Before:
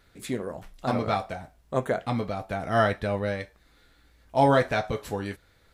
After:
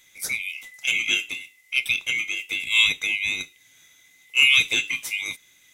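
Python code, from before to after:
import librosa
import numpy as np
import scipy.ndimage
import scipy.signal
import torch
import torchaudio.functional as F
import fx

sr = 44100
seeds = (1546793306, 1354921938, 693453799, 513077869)

y = fx.band_swap(x, sr, width_hz=2000)
y = fx.bass_treble(y, sr, bass_db=-1, treble_db=14)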